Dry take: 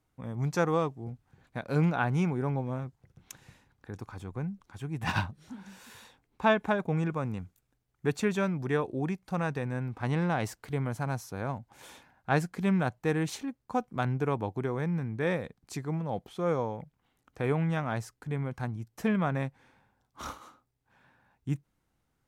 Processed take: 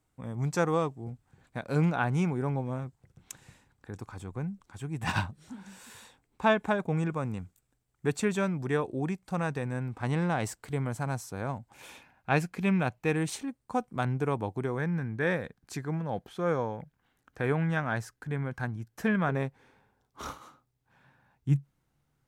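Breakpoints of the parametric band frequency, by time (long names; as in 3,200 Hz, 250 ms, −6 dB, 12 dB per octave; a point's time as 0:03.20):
parametric band +8.5 dB 0.31 octaves
8,000 Hz
from 0:11.74 2,500 Hz
from 0:13.16 8,600 Hz
from 0:14.78 1,600 Hz
from 0:19.29 420 Hz
from 0:20.30 140 Hz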